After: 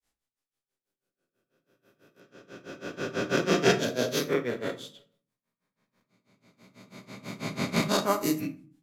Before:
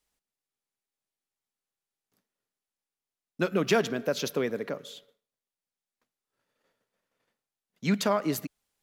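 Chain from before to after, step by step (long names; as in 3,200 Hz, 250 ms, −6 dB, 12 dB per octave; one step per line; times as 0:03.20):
peak hold with a rise ahead of every peak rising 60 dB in 2.20 s
granular cloud 156 ms, grains 6.1 per second, spray 28 ms, pitch spread up and down by 0 semitones
convolution reverb RT60 0.45 s, pre-delay 7 ms, DRR 6 dB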